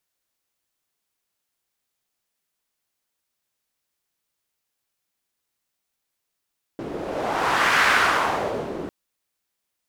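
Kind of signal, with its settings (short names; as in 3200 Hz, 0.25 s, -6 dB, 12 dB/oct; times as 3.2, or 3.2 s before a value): wind-like swept noise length 2.10 s, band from 350 Hz, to 1600 Hz, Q 1.7, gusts 1, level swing 13 dB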